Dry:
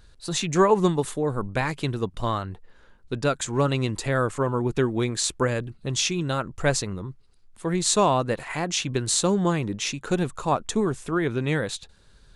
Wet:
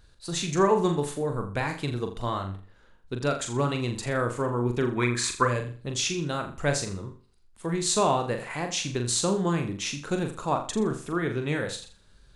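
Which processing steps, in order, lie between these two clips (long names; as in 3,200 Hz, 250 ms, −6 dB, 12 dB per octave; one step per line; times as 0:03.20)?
gain on a spectral selection 0:04.91–0:05.44, 940–2,600 Hz +11 dB
flutter between parallel walls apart 7.1 metres, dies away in 0.39 s
level −4 dB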